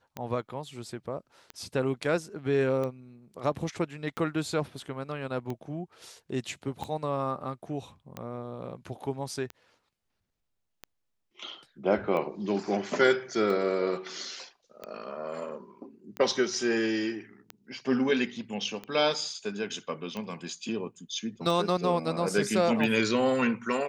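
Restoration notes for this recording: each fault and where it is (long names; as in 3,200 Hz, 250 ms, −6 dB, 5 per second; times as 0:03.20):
scratch tick 45 rpm −22 dBFS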